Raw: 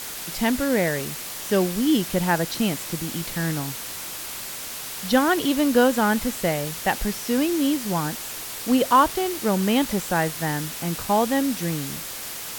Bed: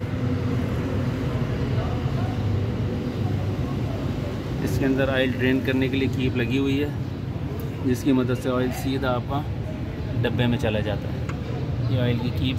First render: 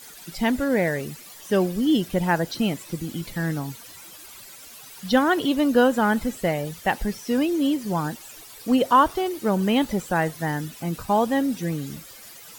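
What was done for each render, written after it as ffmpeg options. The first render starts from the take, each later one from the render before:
-af "afftdn=nr=14:nf=-34"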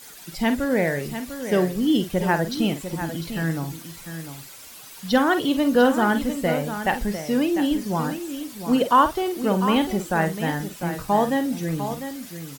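-filter_complex "[0:a]asplit=2[a][b];[b]adelay=49,volume=-10dB[c];[a][c]amix=inputs=2:normalize=0,aecho=1:1:699:0.316"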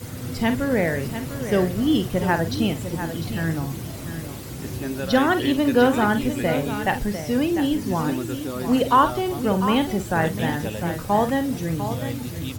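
-filter_complex "[1:a]volume=-7.5dB[a];[0:a][a]amix=inputs=2:normalize=0"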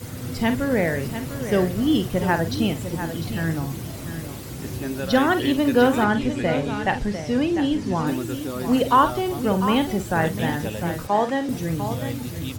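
-filter_complex "[0:a]asettb=1/sr,asplit=3[a][b][c];[a]atrim=end=6.044[d];[b]atrim=start=6.04:end=8.07,asetpts=PTS-STARTPTS,afade=t=in:d=0.004:c=qsin,afade=t=out:st=2.026:d=0.004:c=qsin,lowpass=6.6k[e];[c]atrim=start=8.066[f];[d][e]acrossfade=d=0.004:c1=hsin:c2=qsin[g];[g][f]acrossfade=d=0.004:c1=qsin:c2=hsin,asettb=1/sr,asplit=3[h][i][j];[h]atrim=end=11.074[k];[i]atrim=start=11.07:end=11.49,asetpts=PTS-STARTPTS,afade=t=in:d=0.004:c=qsin,afade=t=out:st=0.416:d=0.004:c=qsin,acrossover=split=220 7900:gain=0.158 1 0.141[l][m][n];[l][m][n]amix=inputs=3:normalize=0[o];[j]atrim=start=11.486[p];[k][o]acrossfade=d=0.004:c1=hsin:c2=qsin[q];[q][p]acrossfade=d=0.004:c1=qsin:c2=hsin"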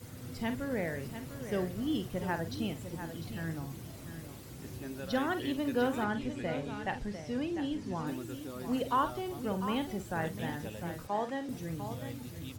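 -af "volume=-13dB"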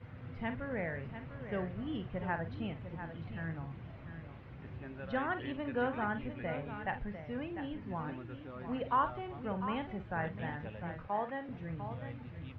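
-af "lowpass=f=2.5k:w=0.5412,lowpass=f=2.5k:w=1.3066,equalizer=f=320:w=1.1:g=-7.5"

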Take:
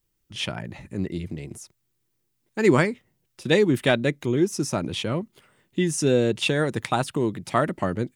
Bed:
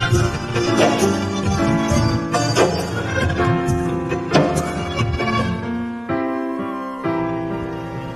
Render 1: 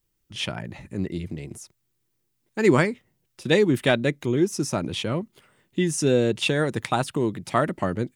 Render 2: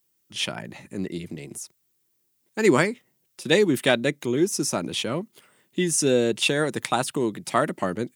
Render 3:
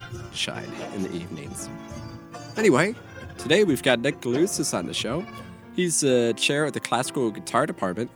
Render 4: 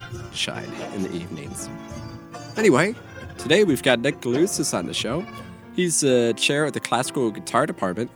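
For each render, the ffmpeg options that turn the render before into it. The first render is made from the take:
-af anull
-af "highpass=170,highshelf=f=5.2k:g=8.5"
-filter_complex "[1:a]volume=-20.5dB[a];[0:a][a]amix=inputs=2:normalize=0"
-af "volume=2dB,alimiter=limit=-2dB:level=0:latency=1"

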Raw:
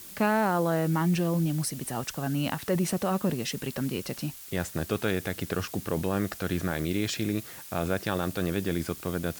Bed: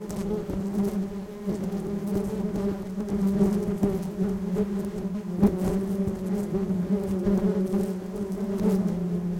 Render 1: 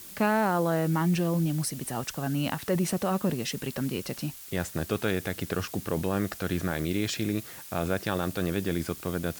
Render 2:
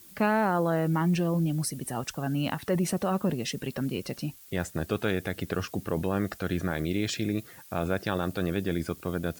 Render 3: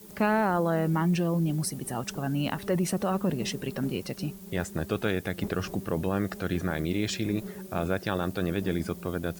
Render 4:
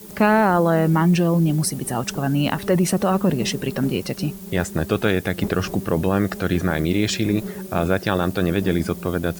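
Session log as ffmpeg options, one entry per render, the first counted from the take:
-af anull
-af "afftdn=nr=9:nf=-45"
-filter_complex "[1:a]volume=-16dB[a];[0:a][a]amix=inputs=2:normalize=0"
-af "volume=8.5dB"

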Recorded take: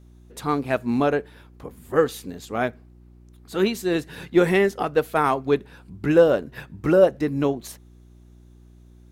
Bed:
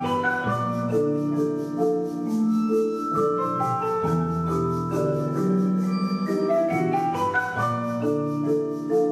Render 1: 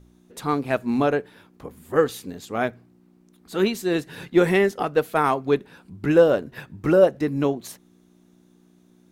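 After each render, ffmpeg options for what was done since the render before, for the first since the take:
-af "bandreject=f=60:t=h:w=4,bandreject=f=120:t=h:w=4"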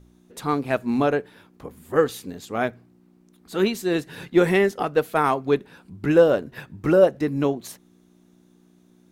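-af anull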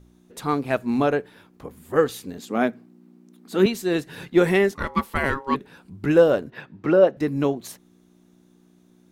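-filter_complex "[0:a]asettb=1/sr,asplit=3[a][b][c];[a]atrim=end=2.384[d];[b]atrim=start=2.38:end=3.66,asetpts=PTS-STARTPTS,afade=t=in:d=0.004:c=qsin,afade=t=out:st=1.276:d=0.004:c=qsin,highpass=f=220:t=q:w=2.4[e];[c]atrim=start=3.656[f];[d][e]acrossfade=d=0.004:c1=hsin:c2=qsin[g];[g][f]acrossfade=d=0.004:c1=qsin:c2=hsin,asplit=3[h][i][j];[h]afade=t=out:st=4.74:d=0.02[k];[i]aeval=exprs='val(0)*sin(2*PI*680*n/s)':c=same,afade=t=in:st=4.74:d=0.02,afade=t=out:st=5.54:d=0.02[l];[j]afade=t=in:st=5.54:d=0.02[m];[k][l][m]amix=inputs=3:normalize=0,asettb=1/sr,asplit=3[n][o][p];[n]atrim=end=6.504[q];[o]atrim=start=6.5:end=7.17,asetpts=PTS-STARTPTS,afade=t=in:d=0.004:c=qsin,afade=t=out:st=0.666:d=0.004:c=qsin,acrossover=split=150 4800:gain=0.2 1 0.158[r][s][t];[r][s][t]amix=inputs=3:normalize=0[u];[p]atrim=start=7.166[v];[q][u]acrossfade=d=0.004:c1=hsin:c2=qsin[w];[w][v]acrossfade=d=0.004:c1=qsin:c2=hsin"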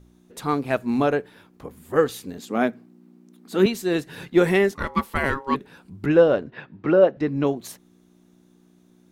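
-filter_complex "[0:a]asettb=1/sr,asplit=3[a][b][c];[a]atrim=end=6.064[d];[b]atrim=start=6.06:end=7.47,asetpts=PTS-STARTPTS,afade=t=in:d=0.004:c=qsin,afade=t=out:st=1.406:d=0.004:c=qsin,lowpass=4.2k[e];[c]atrim=start=7.466[f];[d][e]acrossfade=d=0.004:c1=hsin:c2=qsin[g];[g][f]acrossfade=d=0.004:c1=qsin:c2=hsin"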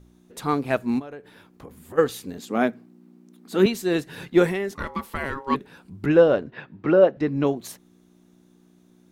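-filter_complex "[0:a]asplit=3[a][b][c];[a]afade=t=out:st=0.98:d=0.02[d];[b]acompressor=threshold=-36dB:ratio=6:attack=3.2:release=140:knee=1:detection=peak,afade=t=in:st=0.98:d=0.02,afade=t=out:st=1.97:d=0.02[e];[c]afade=t=in:st=1.97:d=0.02[f];[d][e][f]amix=inputs=3:normalize=0,asettb=1/sr,asplit=3[g][h][i];[g]atrim=end=4.464[j];[h]atrim=start=4.46:end=5.5,asetpts=PTS-STARTPTS,afade=t=in:d=0.004:c=qsin,afade=t=out:st=1.036:d=0.004:c=qsin,acompressor=threshold=-24dB:ratio=4:attack=3.2:release=140:knee=1:detection=peak[k];[i]atrim=start=5.496[l];[j][k]acrossfade=d=0.004:c1=hsin:c2=qsin[m];[m][l]acrossfade=d=0.004:c1=qsin:c2=hsin"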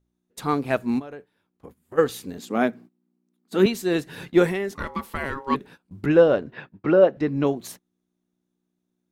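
-af "agate=range=-21dB:threshold=-42dB:ratio=16:detection=peak"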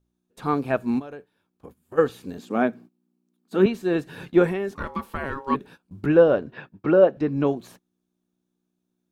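-filter_complex "[0:a]acrossover=split=2700[a][b];[b]acompressor=threshold=-50dB:ratio=4:attack=1:release=60[c];[a][c]amix=inputs=2:normalize=0,bandreject=f=2k:w=9.1"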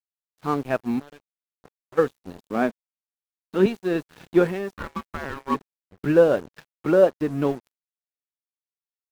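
-af "acrusher=bits=7:mix=0:aa=0.5,aeval=exprs='sgn(val(0))*max(abs(val(0))-0.0133,0)':c=same"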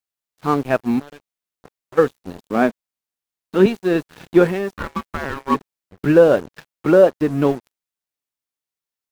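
-af "volume=6dB,alimiter=limit=-2dB:level=0:latency=1"

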